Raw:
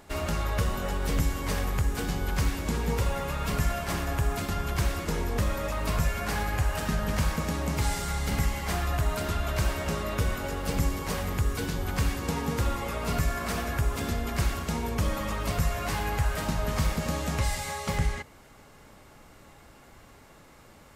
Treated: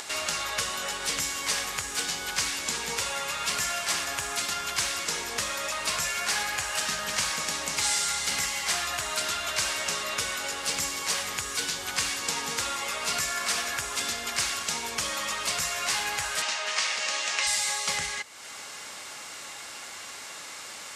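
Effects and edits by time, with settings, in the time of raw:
16.42–17.47 speaker cabinet 460–8100 Hz, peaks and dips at 1900 Hz +4 dB, 2700 Hz +5 dB, 7600 Hz -3 dB
whole clip: weighting filter ITU-R 468; upward compressor, threshold -30 dBFS

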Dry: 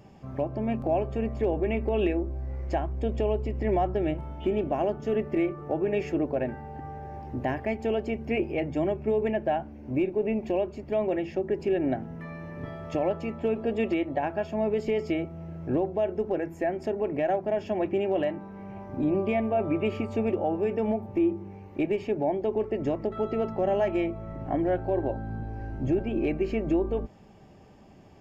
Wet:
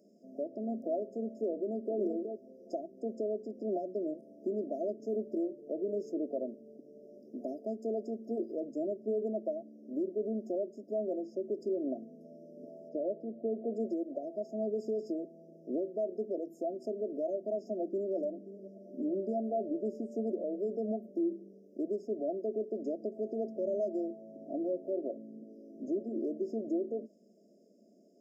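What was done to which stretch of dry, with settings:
1.52–1.98 echo throw 0.37 s, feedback 10%, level -6 dB
12.88–13.73 LPF 3300 Hz -> 2100 Hz 24 dB/oct
17.62–18.14 echo throw 0.53 s, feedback 30%, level -16.5 dB
whole clip: elliptic high-pass 210 Hz, stop band 50 dB; FFT band-reject 700–4800 Hz; gain -7 dB

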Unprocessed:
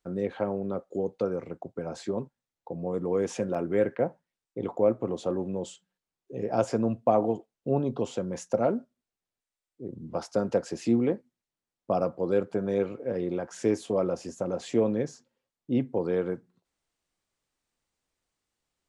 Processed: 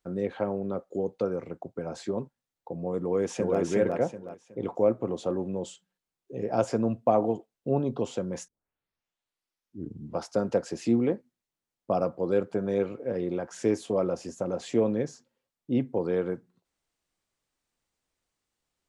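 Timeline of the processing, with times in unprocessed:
3.02–3.6 echo throw 0.37 s, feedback 30%, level -1.5 dB
8.48 tape start 1.68 s

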